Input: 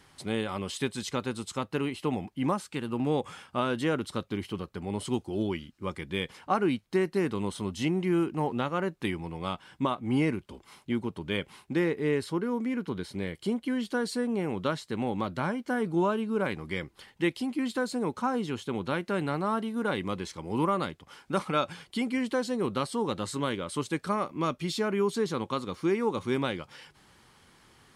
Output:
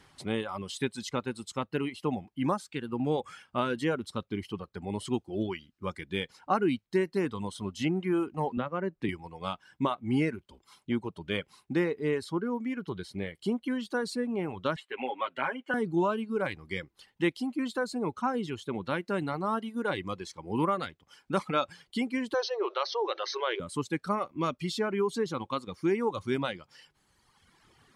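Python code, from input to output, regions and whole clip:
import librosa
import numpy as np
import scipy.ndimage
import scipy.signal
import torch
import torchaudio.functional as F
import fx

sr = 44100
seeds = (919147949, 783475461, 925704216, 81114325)

y = fx.chain(x, sr, fx.lowpass(hz=1300.0, slope=6),
    fx.band_squash(depth_pct=70), at=(8.57, 9.09))
y = fx.chain(y, sr, fx.highpass(hz=450.0, slope=12),
    fx.high_shelf_res(hz=3800.0, db=-9.5, q=3.0),
    fx.comb(ms=7.4, depth=0.75), at=(14.76, 15.74))
y = fx.chain(y, sr, fx.brickwall_bandpass(low_hz=340.0, high_hz=6300.0),
    fx.env_flatten(amount_pct=50), at=(22.34, 23.6))
y = fx.dereverb_blind(y, sr, rt60_s=1.6)
y = fx.high_shelf(y, sr, hz=8900.0, db=-6.5)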